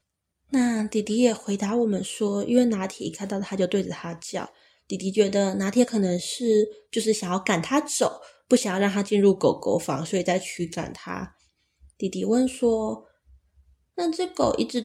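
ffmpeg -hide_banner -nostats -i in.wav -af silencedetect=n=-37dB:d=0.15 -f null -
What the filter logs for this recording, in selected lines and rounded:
silence_start: 0.00
silence_end: 0.52 | silence_duration: 0.52
silence_start: 4.46
silence_end: 4.90 | silence_duration: 0.44
silence_start: 6.72
silence_end: 6.93 | silence_duration: 0.22
silence_start: 8.27
silence_end: 8.51 | silence_duration: 0.24
silence_start: 11.26
silence_end: 12.00 | silence_duration: 0.74
silence_start: 12.98
silence_end: 13.98 | silence_duration: 1.00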